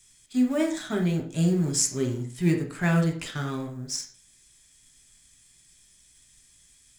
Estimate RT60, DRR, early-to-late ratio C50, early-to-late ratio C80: 0.50 s, 2.0 dB, 9.0 dB, 14.5 dB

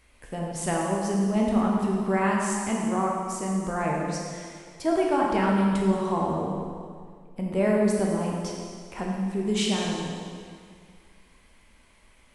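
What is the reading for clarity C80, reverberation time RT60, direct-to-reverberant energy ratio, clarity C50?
1.5 dB, 2.1 s, −2.5 dB, 0.0 dB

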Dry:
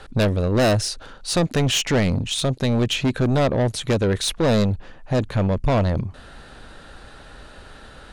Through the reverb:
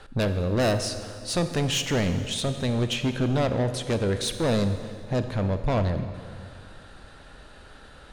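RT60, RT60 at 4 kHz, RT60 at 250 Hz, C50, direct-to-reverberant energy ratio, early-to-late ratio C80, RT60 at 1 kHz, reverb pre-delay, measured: 2.3 s, 2.1 s, 2.3 s, 9.5 dB, 8.5 dB, 10.5 dB, 2.3 s, 29 ms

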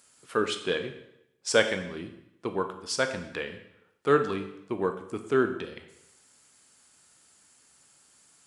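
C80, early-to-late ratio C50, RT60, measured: 12.0 dB, 9.5 dB, 0.85 s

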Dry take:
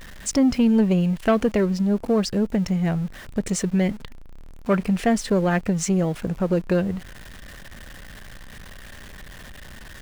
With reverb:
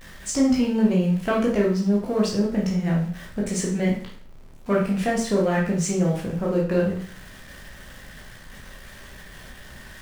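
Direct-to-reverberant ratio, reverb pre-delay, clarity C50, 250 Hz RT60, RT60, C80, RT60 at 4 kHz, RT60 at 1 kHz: −3.5 dB, 14 ms, 4.5 dB, 0.50 s, 0.50 s, 9.5 dB, 0.45 s, 0.50 s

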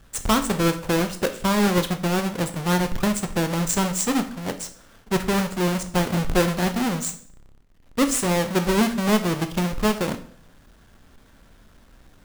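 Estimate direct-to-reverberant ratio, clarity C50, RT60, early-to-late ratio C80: 7.5 dB, 12.5 dB, 0.55 s, 16.5 dB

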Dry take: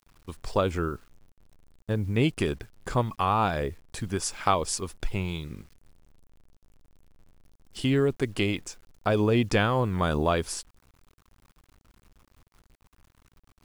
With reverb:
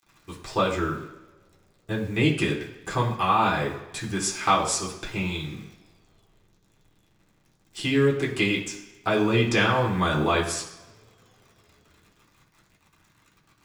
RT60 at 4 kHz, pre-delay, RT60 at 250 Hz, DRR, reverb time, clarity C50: 2.1 s, 3 ms, 1.0 s, −4.0 dB, 1.2 s, 7.5 dB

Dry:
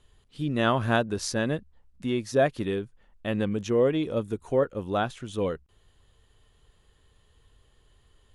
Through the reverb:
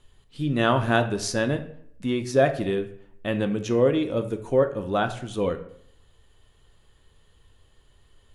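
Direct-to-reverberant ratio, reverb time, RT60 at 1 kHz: 7.0 dB, 0.70 s, 0.65 s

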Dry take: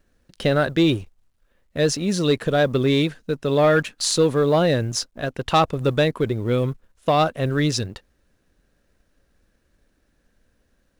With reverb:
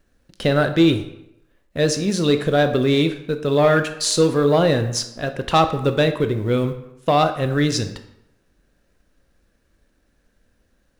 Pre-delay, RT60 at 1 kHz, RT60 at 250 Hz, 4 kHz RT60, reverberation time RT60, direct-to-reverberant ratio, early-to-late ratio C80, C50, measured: 18 ms, 0.85 s, 0.80 s, 0.60 s, 0.85 s, 8.0 dB, 13.5 dB, 11.0 dB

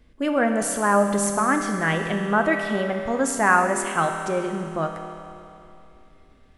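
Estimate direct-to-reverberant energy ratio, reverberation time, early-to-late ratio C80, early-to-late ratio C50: 3.0 dB, 2.8 s, 5.5 dB, 4.5 dB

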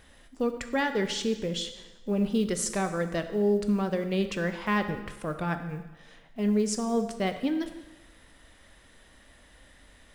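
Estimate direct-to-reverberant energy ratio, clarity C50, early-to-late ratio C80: 8.0 dB, 10.0 dB, 11.5 dB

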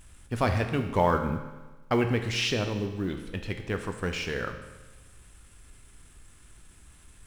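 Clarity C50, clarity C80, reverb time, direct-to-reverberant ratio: 8.0 dB, 9.5 dB, 1.2 s, 5.5 dB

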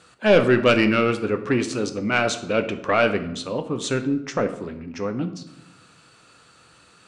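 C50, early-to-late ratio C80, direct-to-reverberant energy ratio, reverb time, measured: 12.0 dB, 15.0 dB, 7.5 dB, 0.90 s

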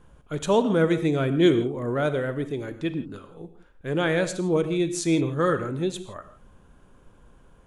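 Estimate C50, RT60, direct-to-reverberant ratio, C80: 11.5 dB, non-exponential decay, 10.5 dB, 13.0 dB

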